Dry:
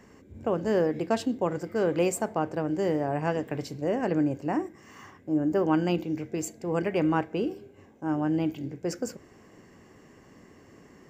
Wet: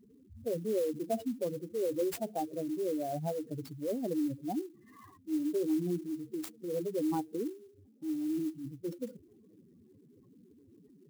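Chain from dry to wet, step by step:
expanding power law on the bin magnitudes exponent 3.7
converter with an unsteady clock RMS 0.035 ms
level −6 dB

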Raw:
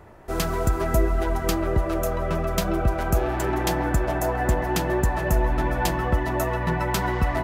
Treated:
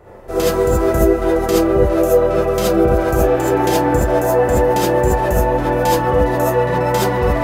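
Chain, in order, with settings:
parametric band 510 Hz +10 dB 0.76 octaves
reverb whose tail is shaped and stops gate 100 ms rising, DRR −6.5 dB
level −2 dB

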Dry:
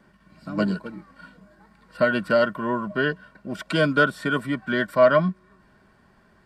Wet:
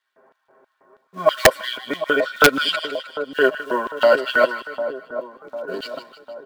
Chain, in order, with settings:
played backwards from end to start
low-pass that shuts in the quiet parts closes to 1,200 Hz, open at −14.5 dBFS
comb filter 7.5 ms, depth 75%
in parallel at −11 dB: floating-point word with a short mantissa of 2 bits
on the sum: auto-filter high-pass square 3.1 Hz 490–3,500 Hz
on a send: echo with a time of its own for lows and highs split 1,100 Hz, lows 750 ms, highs 155 ms, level −10.5 dB
on the sum: wrap-around overflow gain 2 dB

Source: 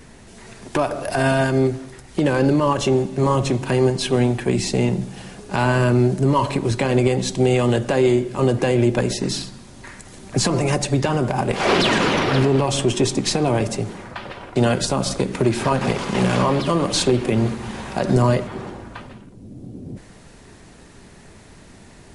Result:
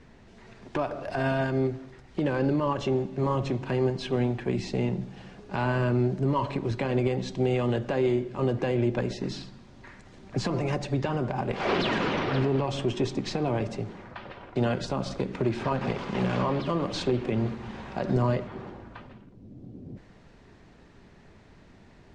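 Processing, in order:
high-frequency loss of the air 150 metres
level −8 dB

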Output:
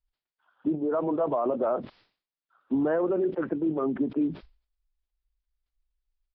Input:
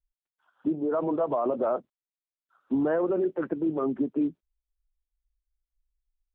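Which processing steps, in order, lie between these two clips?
downsampling to 11,025 Hz
level that may fall only so fast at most 140 dB per second

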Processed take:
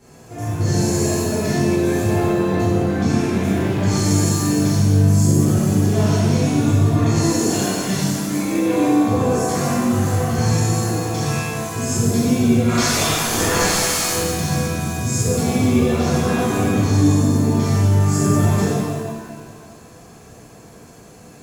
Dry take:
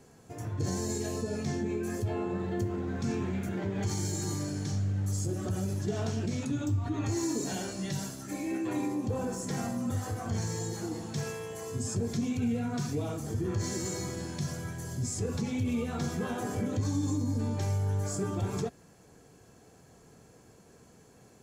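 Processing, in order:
0:12.67–0:14.07: ceiling on every frequency bin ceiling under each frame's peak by 28 dB
reverb with rising layers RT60 1.6 s, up +7 semitones, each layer −8 dB, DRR −11 dB
level +2.5 dB

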